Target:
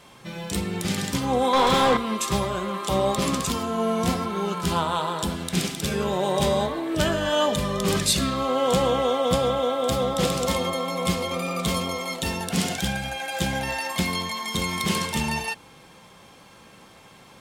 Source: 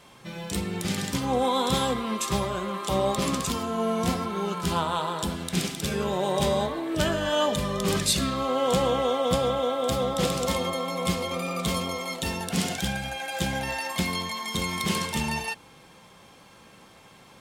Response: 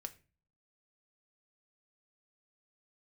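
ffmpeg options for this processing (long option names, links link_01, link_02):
-filter_complex "[0:a]acontrast=20,asettb=1/sr,asplit=3[link_01][link_02][link_03];[link_01]atrim=end=1.534[link_04];[link_02]atrim=start=1.53:end=1.97,asetpts=PTS-STARTPTS,afade=type=in:duration=0.004:curve=qsin,afade=type=out:start_time=0.436:duration=0.004:curve=qsin,asplit=2[link_05][link_06];[link_06]highpass=frequency=720:poles=1,volume=24dB,asoftclip=type=tanh:threshold=-7.5dB[link_07];[link_05][link_07]amix=inputs=2:normalize=0,lowpass=frequency=1600:poles=1,volume=-6dB[link_08];[link_03]atrim=start=1.966[link_09];[link_04][link_08]acrossfade=duration=0.004:curve1=hsin:curve2=qsin[link_10];[link_10][link_09]acrossfade=duration=0.004:curve1=qsin:curve2=hsin,volume=-2.5dB"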